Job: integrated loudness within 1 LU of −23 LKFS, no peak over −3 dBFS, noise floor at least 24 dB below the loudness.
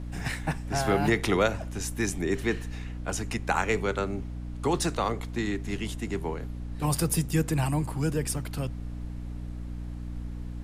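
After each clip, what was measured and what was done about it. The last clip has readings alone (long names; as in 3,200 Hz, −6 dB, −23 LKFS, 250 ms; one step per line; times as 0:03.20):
mains hum 60 Hz; hum harmonics up to 300 Hz; level of the hum −34 dBFS; background noise floor −37 dBFS; target noise floor −54 dBFS; integrated loudness −30.0 LKFS; sample peak −11.0 dBFS; target loudness −23.0 LKFS
→ hum removal 60 Hz, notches 5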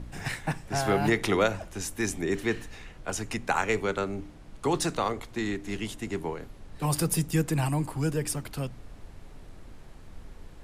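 mains hum none found; background noise floor −48 dBFS; target noise floor −54 dBFS
→ noise reduction from a noise print 6 dB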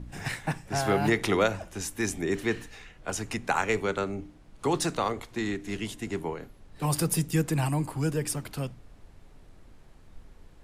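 background noise floor −53 dBFS; target noise floor −54 dBFS
→ noise reduction from a noise print 6 dB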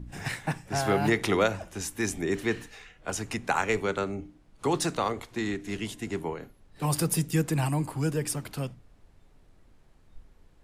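background noise floor −59 dBFS; integrated loudness −29.5 LKFS; sample peak −11.5 dBFS; target loudness −23.0 LKFS
→ level +6.5 dB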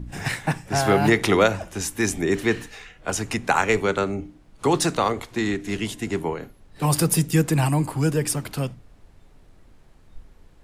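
integrated loudness −23.0 LKFS; sample peak −5.0 dBFS; background noise floor −52 dBFS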